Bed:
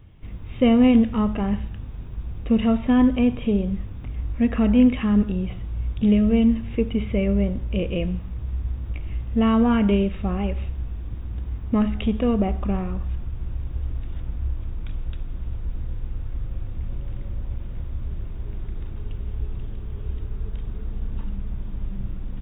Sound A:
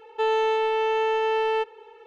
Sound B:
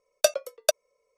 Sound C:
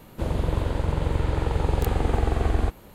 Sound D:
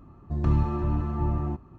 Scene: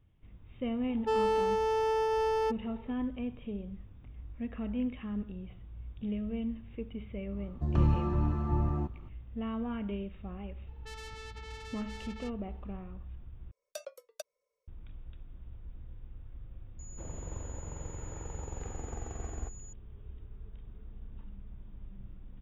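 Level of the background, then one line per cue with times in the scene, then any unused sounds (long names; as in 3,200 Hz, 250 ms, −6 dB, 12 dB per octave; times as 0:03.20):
bed −17.5 dB
0:00.88: mix in A −5 dB + adaptive Wiener filter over 15 samples
0:07.31: mix in D −3 dB
0:10.67: mix in A −17 dB + saturating transformer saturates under 3,800 Hz
0:13.51: overwrite with B −13 dB + brickwall limiter −16 dBFS
0:16.79: mix in C −18 dB + switching amplifier with a slow clock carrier 6,900 Hz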